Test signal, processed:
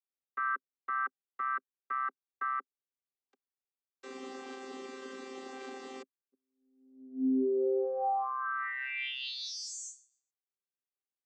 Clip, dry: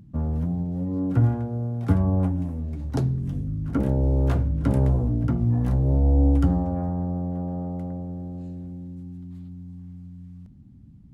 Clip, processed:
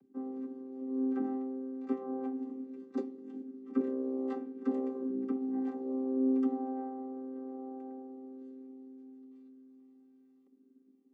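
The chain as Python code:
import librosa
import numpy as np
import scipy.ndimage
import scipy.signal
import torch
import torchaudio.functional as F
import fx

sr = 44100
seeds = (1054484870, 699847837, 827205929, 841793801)

y = fx.chord_vocoder(x, sr, chord='bare fifth', root=60)
y = fx.low_shelf(y, sr, hz=150.0, db=-5.0)
y = F.gain(torch.from_numpy(y), -8.5).numpy()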